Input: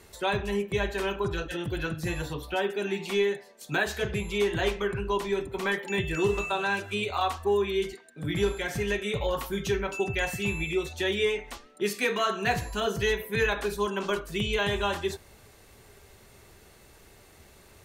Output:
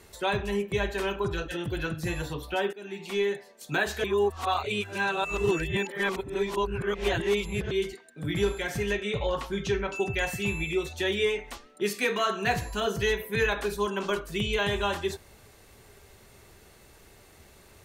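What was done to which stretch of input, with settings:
0:02.73–0:03.35: fade in, from −16.5 dB
0:04.04–0:07.71: reverse
0:08.93–0:09.96: low-pass filter 6,400 Hz

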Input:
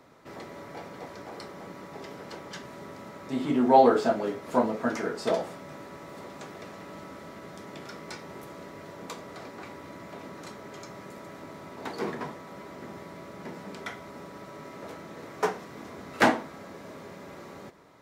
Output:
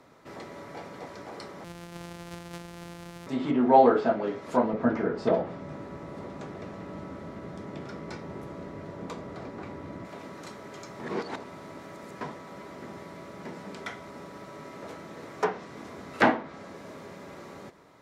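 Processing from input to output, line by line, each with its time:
0:01.64–0:03.27: samples sorted by size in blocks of 256 samples
0:04.73–0:10.05: spectral tilt −2.5 dB per octave
0:11.00–0:12.21: reverse
whole clip: treble cut that deepens with the level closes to 2,900 Hz, closed at −22.5 dBFS

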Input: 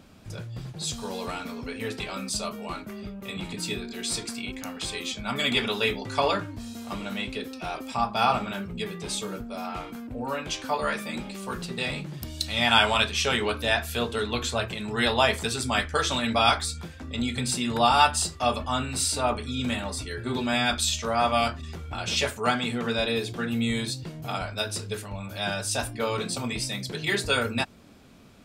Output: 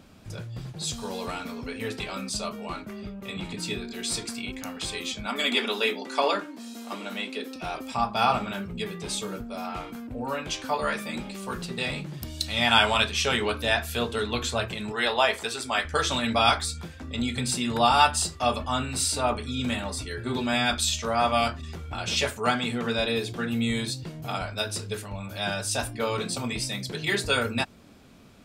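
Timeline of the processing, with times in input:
0:02.21–0:03.81: high-shelf EQ 11,000 Hz −8 dB
0:05.26–0:07.56: Butterworth high-pass 220 Hz
0:14.92–0:15.85: bass and treble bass −15 dB, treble −4 dB

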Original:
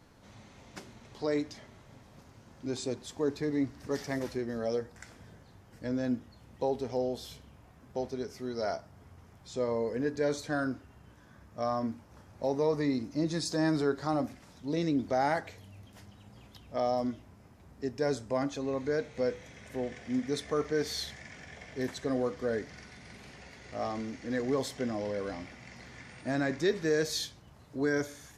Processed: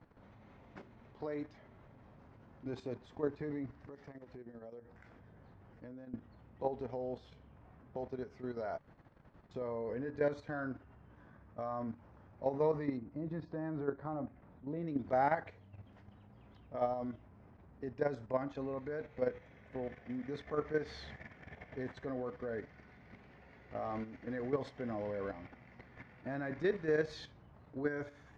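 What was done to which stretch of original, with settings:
0:03.82–0:06.14: downward compressor 16 to 1, threshold −45 dBFS
0:08.78–0:09.51: fill with room tone
0:12.97–0:14.88: head-to-tape spacing loss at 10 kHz 37 dB
whole clip: low-pass filter 1,900 Hz 12 dB per octave; dynamic equaliser 290 Hz, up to −4 dB, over −44 dBFS, Q 0.8; output level in coarse steps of 10 dB; level +1 dB

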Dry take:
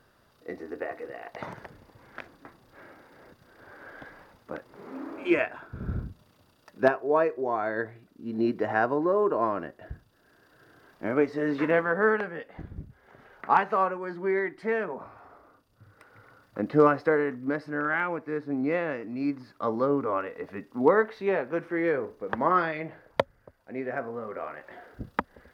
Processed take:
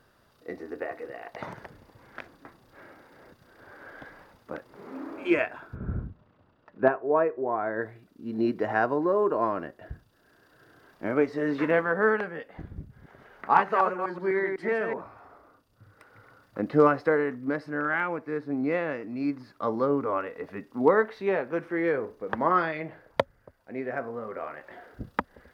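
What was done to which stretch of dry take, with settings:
0:05.75–0:07.82: low-pass filter 1,900 Hz
0:12.81–0:15.01: delay that plays each chunk backwards 125 ms, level −5 dB

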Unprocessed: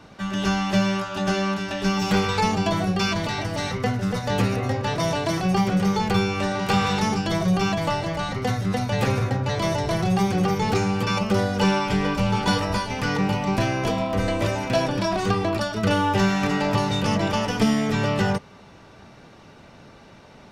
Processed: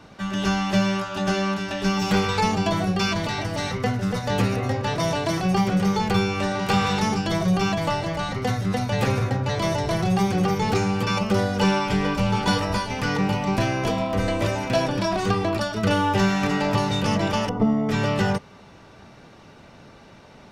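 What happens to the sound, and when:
0:17.49–0:17.89: Savitzky-Golay smoothing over 65 samples

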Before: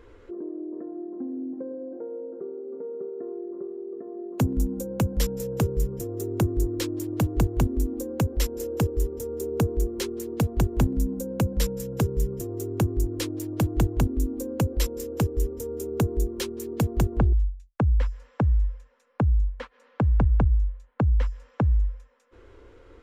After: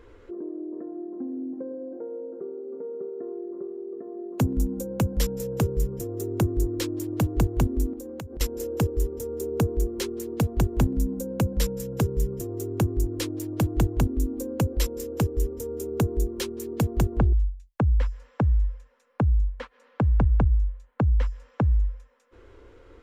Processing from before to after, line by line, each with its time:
0:07.93–0:08.41: downward compressor 16 to 1, threshold −33 dBFS

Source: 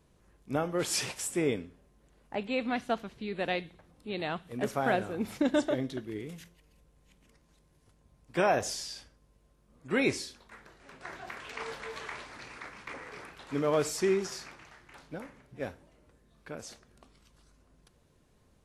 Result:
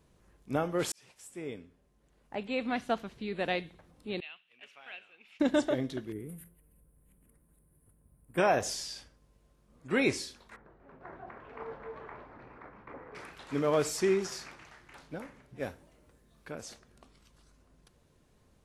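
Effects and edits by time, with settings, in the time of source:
0:00.92–0:02.89: fade in
0:04.20–0:05.40: resonant band-pass 2,700 Hz, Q 6
0:06.12–0:08.38: drawn EQ curve 170 Hz 0 dB, 460 Hz −4 dB, 840 Hz −9 dB, 1,500 Hz −7 dB, 6,000 Hz −25 dB, 9,500 Hz +8 dB
0:10.56–0:13.15: low-pass filter 1,000 Hz
0:15.58–0:16.52: high-shelf EQ 9,500 Hz +8 dB

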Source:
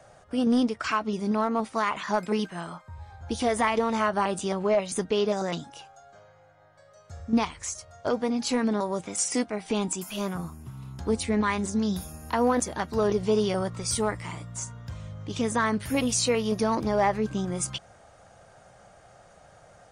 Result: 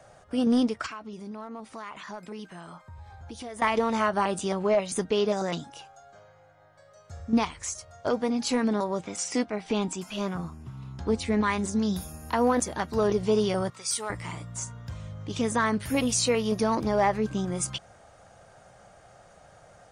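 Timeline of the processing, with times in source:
0:00.86–0:03.62: downward compressor 2.5 to 1, threshold −42 dBFS
0:08.84–0:11.26: low-pass filter 6,000 Hz
0:13.70–0:14.10: high-pass filter 1,400 Hz 6 dB per octave

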